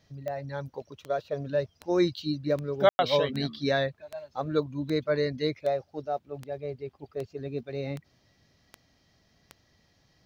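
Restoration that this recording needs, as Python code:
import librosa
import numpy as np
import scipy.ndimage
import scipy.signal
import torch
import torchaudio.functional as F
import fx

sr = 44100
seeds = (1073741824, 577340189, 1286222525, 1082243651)

y = fx.fix_declick_ar(x, sr, threshold=10.0)
y = fx.fix_ambience(y, sr, seeds[0], print_start_s=8.81, print_end_s=9.31, start_s=2.89, end_s=2.99)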